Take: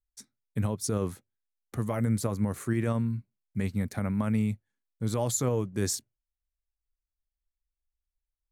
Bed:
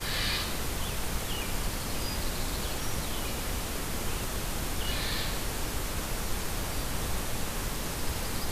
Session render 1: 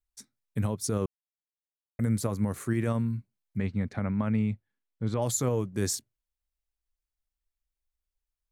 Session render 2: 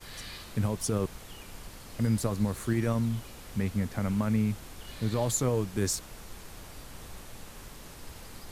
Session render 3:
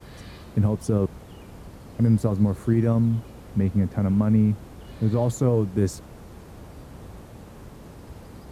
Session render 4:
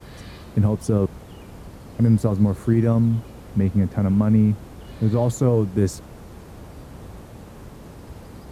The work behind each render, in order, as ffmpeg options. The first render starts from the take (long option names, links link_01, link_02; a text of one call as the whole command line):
ffmpeg -i in.wav -filter_complex "[0:a]asettb=1/sr,asplit=3[link_01][link_02][link_03];[link_01]atrim=end=3.574[link_04];[link_02]atrim=start=3.57:end=5.22,asetpts=PTS-STARTPTS,afade=type=in:duration=0.004:curve=qsin,afade=type=out:start_time=1.646:duration=0.004:curve=qsin,lowpass=3500[link_05];[link_03]atrim=start=5.216[link_06];[link_04][link_05]acrossfade=duration=0.004:curve1=hsin:curve2=qsin[link_07];[link_07][link_06]acrossfade=duration=0.004:curve1=qsin:curve2=hsin,asplit=3[link_08][link_09][link_10];[link_08]atrim=end=1.06,asetpts=PTS-STARTPTS,afade=type=out:start_time=1.056:duration=0.004:curve=hsin[link_11];[link_09]atrim=start=1.06:end=1.99,asetpts=PTS-STARTPTS,volume=0[link_12];[link_10]atrim=start=1.99,asetpts=PTS-STARTPTS,afade=type=in:duration=0.004:curve=hsin[link_13];[link_11][link_12][link_13]concat=n=3:v=0:a=1" out.wav
ffmpeg -i in.wav -i bed.wav -filter_complex "[1:a]volume=-13dB[link_01];[0:a][link_01]amix=inputs=2:normalize=0" out.wav
ffmpeg -i in.wav -af "highpass=56,tiltshelf=frequency=1200:gain=8.5" out.wav
ffmpeg -i in.wav -af "volume=2.5dB" out.wav